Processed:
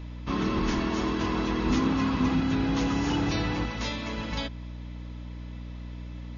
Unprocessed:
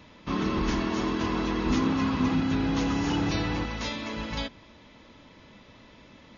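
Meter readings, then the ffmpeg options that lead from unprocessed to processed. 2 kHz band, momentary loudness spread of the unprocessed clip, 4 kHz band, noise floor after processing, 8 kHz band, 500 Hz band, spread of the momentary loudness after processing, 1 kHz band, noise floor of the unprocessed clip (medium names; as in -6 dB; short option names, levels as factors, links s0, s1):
0.0 dB, 8 LU, 0.0 dB, -39 dBFS, no reading, 0.0 dB, 15 LU, 0.0 dB, -53 dBFS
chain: -af "aeval=exprs='val(0)+0.0141*(sin(2*PI*60*n/s)+sin(2*PI*2*60*n/s)/2+sin(2*PI*3*60*n/s)/3+sin(2*PI*4*60*n/s)/4+sin(2*PI*5*60*n/s)/5)':c=same"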